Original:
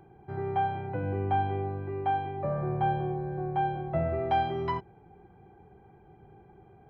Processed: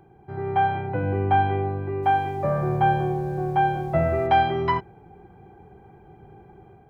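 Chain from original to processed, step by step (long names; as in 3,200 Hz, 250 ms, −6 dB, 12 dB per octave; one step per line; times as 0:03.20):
dynamic equaliser 1,800 Hz, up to +5 dB, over −42 dBFS, Q 0.94
automatic gain control gain up to 5 dB
0:02.02–0:04.26: background noise pink −61 dBFS
level +1.5 dB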